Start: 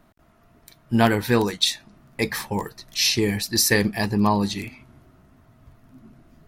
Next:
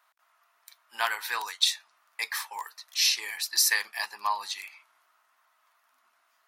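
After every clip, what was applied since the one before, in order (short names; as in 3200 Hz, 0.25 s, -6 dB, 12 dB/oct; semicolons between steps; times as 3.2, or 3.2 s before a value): Chebyshev high-pass 1000 Hz, order 3; gain -2.5 dB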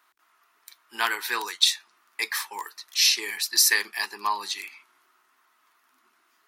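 resonant low shelf 470 Hz +7.5 dB, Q 3; gain +4 dB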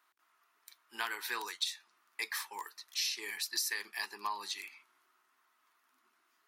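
compressor 5:1, threshold -24 dBFS, peak gain reduction 9.5 dB; gain -8 dB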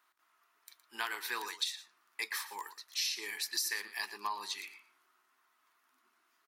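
echo 0.116 s -14 dB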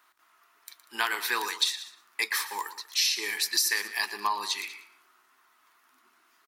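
echo 0.191 s -18.5 dB; gain +9 dB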